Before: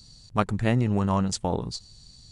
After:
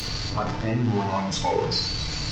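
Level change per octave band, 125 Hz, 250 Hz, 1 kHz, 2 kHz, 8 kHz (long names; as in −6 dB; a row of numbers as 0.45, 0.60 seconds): −0.5, −1.5, +3.5, +3.0, +2.5 decibels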